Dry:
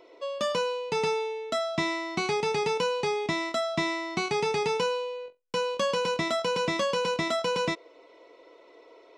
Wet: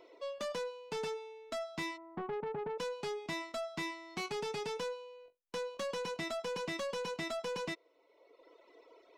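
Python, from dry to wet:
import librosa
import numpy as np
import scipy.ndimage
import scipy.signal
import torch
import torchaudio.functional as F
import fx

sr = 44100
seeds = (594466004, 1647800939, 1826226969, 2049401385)

y = fx.dereverb_blind(x, sr, rt60_s=1.2)
y = fx.lowpass(y, sr, hz=1200.0, slope=24, at=(1.96, 2.78), fade=0.02)
y = 10.0 ** (-29.5 / 20.0) * np.tanh(y / 10.0 ** (-29.5 / 20.0))
y = y * librosa.db_to_amplitude(-4.5)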